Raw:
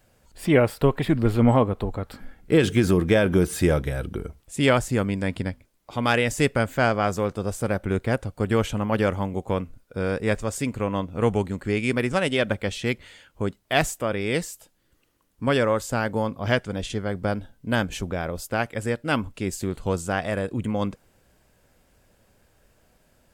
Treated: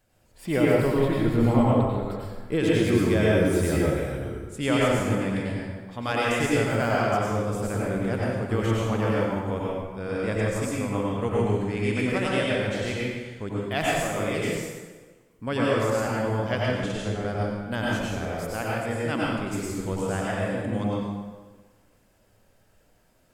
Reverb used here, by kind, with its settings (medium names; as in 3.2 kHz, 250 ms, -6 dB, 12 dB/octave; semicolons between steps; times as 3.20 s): plate-style reverb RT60 1.4 s, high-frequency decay 0.75×, pre-delay 80 ms, DRR -5.5 dB; trim -8 dB